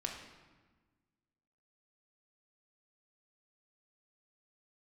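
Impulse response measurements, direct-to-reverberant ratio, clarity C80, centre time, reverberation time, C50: -0.5 dB, 7.0 dB, 38 ms, 1.3 s, 5.0 dB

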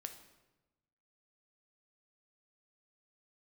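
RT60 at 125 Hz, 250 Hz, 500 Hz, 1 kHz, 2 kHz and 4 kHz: 1.4, 1.3, 1.1, 1.0, 0.90, 0.80 s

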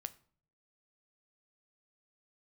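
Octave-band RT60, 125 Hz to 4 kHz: 0.85, 0.70, 0.55, 0.50, 0.40, 0.35 s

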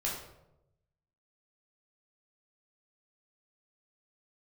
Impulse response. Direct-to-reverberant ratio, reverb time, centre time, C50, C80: -4.5 dB, 0.90 s, 45 ms, 3.5 dB, 6.5 dB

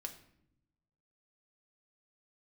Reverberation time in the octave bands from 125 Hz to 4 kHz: 1.5, 1.3, 0.85, 0.65, 0.60, 0.50 s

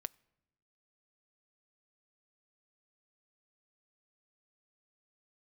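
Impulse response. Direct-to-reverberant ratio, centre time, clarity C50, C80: 20.0 dB, 2 ms, 26.5 dB, 28.5 dB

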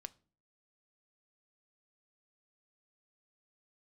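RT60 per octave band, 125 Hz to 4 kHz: 0.55, 0.60, 0.50, 0.35, 0.30, 0.30 s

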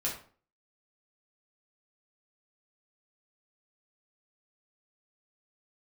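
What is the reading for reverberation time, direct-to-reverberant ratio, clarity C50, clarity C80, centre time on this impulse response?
0.45 s, -4.5 dB, 6.5 dB, 11.0 dB, 28 ms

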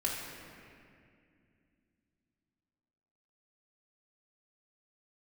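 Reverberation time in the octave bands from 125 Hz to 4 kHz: 3.5, 3.7, 2.6, 2.1, 2.4, 1.7 s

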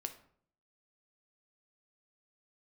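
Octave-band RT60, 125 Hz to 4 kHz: 0.75, 0.70, 0.60, 0.55, 0.45, 0.35 s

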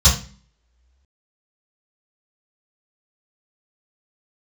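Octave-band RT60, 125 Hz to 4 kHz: 0.50, 0.60, 0.40, 0.35, 0.40, 0.35 s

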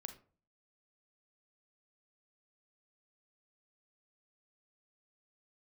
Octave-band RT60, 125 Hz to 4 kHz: 0.60, 0.55, 0.45, 0.40, 0.30, 0.25 s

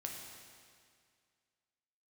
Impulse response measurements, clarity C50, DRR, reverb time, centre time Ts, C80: 2.5 dB, 0.0 dB, 2.1 s, 77 ms, 4.0 dB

